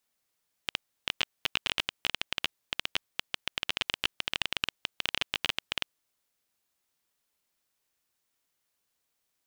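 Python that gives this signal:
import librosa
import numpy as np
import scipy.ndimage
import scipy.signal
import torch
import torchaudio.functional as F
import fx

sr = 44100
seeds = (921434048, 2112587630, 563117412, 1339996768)

y = fx.geiger_clicks(sr, seeds[0], length_s=5.32, per_s=15.0, level_db=-9.5)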